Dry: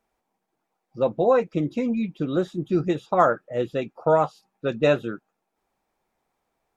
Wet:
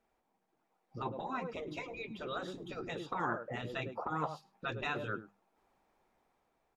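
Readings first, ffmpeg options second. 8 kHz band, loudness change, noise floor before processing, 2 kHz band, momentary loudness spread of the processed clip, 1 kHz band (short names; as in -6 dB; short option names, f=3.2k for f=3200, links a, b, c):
n/a, -16.0 dB, -79 dBFS, -6.5 dB, 7 LU, -12.5 dB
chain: -filter_complex "[0:a]highshelf=f=5.2k:g=-8.5,asplit=2[a][b];[b]aecho=0:1:104:0.075[c];[a][c]amix=inputs=2:normalize=0,alimiter=limit=-14dB:level=0:latency=1:release=316,acompressor=threshold=-25dB:ratio=6,afftfilt=real='re*lt(hypot(re,im),0.1)':imag='im*lt(hypot(re,im),0.1)':win_size=1024:overlap=0.75,adynamicequalizer=threshold=0.00126:dfrequency=1000:dqfactor=2.8:tfrequency=1000:tqfactor=2.8:attack=5:release=100:ratio=0.375:range=2:mode=boostabove:tftype=bell,bandreject=f=50:t=h:w=6,bandreject=f=100:t=h:w=6,bandreject=f=150:t=h:w=6,bandreject=f=200:t=h:w=6,dynaudnorm=f=260:g=7:m=4dB,volume=-1.5dB"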